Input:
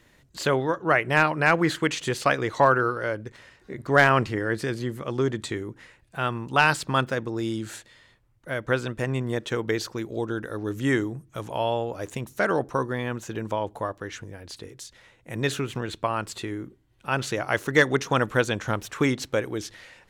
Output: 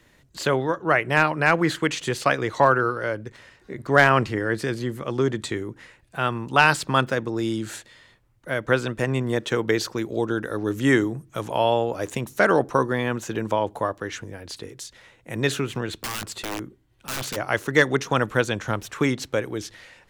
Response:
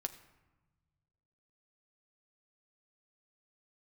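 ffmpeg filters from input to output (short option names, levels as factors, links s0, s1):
-filter_complex "[0:a]acrossover=split=150[s0][s1];[s1]dynaudnorm=f=290:g=31:m=2.24[s2];[s0][s2]amix=inputs=2:normalize=0,asplit=3[s3][s4][s5];[s3]afade=t=out:st=15.93:d=0.02[s6];[s4]aeval=exprs='(mod(16.8*val(0)+1,2)-1)/16.8':c=same,afade=t=in:st=15.93:d=0.02,afade=t=out:st=17.35:d=0.02[s7];[s5]afade=t=in:st=17.35:d=0.02[s8];[s6][s7][s8]amix=inputs=3:normalize=0,volume=1.12"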